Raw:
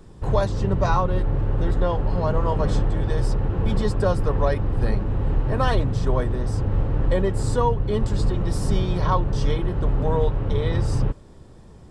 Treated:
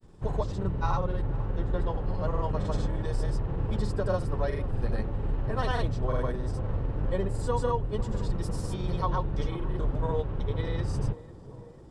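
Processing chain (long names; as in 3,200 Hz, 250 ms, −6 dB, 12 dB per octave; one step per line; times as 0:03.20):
granular cloud, pitch spread up and down by 0 semitones
tape delay 495 ms, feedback 85%, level −14.5 dB, low-pass 1,100 Hz
level −6.5 dB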